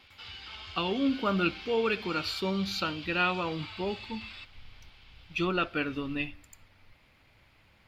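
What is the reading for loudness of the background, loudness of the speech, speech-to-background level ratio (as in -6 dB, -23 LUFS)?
-42.5 LUFS, -31.0 LUFS, 11.5 dB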